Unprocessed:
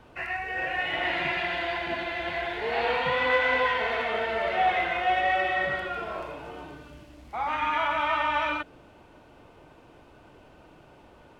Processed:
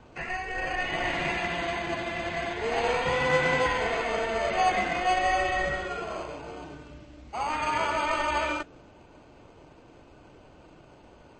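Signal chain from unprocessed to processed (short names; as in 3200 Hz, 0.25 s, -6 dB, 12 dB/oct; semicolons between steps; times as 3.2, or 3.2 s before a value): high shelf 4600 Hz -2.5 dB; in parallel at -6 dB: sample-and-hold 24×; on the sum: gain -1.5 dB; MP3 32 kbps 22050 Hz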